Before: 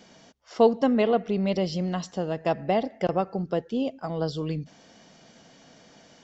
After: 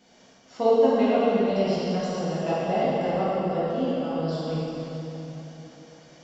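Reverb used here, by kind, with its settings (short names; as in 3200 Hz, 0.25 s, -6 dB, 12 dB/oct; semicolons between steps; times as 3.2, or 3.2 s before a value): plate-style reverb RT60 3.6 s, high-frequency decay 0.85×, DRR -10 dB; gain -9 dB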